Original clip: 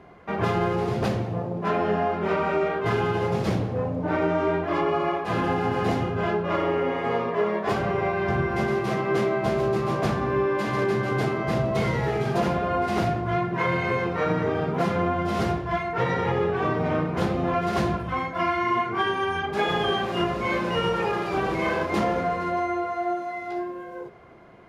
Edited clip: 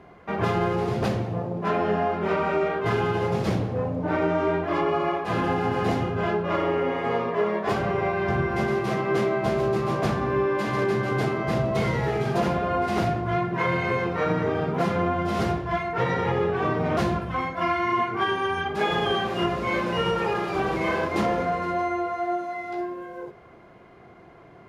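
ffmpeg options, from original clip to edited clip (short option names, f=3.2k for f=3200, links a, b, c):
-filter_complex "[0:a]asplit=2[a][b];[a]atrim=end=16.972[c];[b]atrim=start=17.748[d];[c][d]acrossfade=d=0.004:c1=hsin:c2=hsin"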